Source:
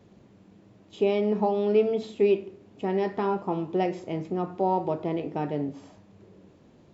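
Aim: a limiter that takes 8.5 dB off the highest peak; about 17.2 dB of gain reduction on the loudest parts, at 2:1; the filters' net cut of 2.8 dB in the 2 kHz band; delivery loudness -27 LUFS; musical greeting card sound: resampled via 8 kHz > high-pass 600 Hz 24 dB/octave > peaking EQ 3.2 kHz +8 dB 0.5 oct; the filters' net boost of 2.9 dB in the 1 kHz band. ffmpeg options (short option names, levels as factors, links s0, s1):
-af "equalizer=f=1000:t=o:g=5.5,equalizer=f=2000:t=o:g=-7.5,acompressor=threshold=0.00316:ratio=2,alimiter=level_in=3.35:limit=0.0631:level=0:latency=1,volume=0.299,aresample=8000,aresample=44100,highpass=f=600:w=0.5412,highpass=f=600:w=1.3066,equalizer=f=3200:t=o:w=0.5:g=8,volume=15.8"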